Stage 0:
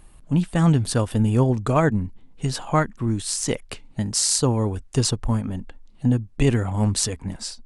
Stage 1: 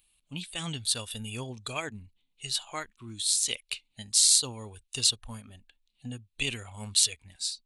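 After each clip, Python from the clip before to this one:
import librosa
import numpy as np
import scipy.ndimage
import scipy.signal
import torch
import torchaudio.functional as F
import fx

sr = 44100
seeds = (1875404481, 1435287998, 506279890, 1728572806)

y = F.preemphasis(torch.from_numpy(x), 0.9).numpy()
y = fx.noise_reduce_blind(y, sr, reduce_db=10)
y = fx.band_shelf(y, sr, hz=3100.0, db=12.5, octaves=1.1)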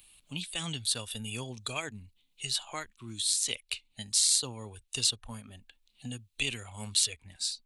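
y = fx.band_squash(x, sr, depth_pct=40)
y = y * librosa.db_to_amplitude(-1.5)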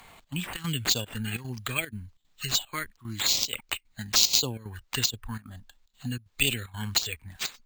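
y = fx.step_gate(x, sr, bpm=187, pattern='xxx.xxx.xx', floor_db=-12.0, edge_ms=4.5)
y = fx.env_phaser(y, sr, low_hz=350.0, high_hz=1900.0, full_db=-26.5)
y = np.repeat(y[::4], 4)[:len(y)]
y = y * librosa.db_to_amplitude(8.5)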